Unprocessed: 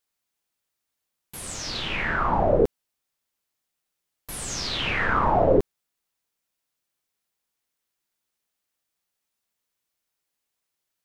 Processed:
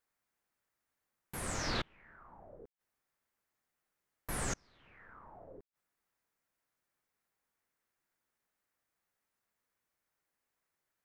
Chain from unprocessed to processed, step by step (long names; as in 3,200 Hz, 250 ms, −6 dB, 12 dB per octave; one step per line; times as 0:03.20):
gate with flip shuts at −20 dBFS, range −35 dB
high shelf with overshoot 2,400 Hz −7 dB, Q 1.5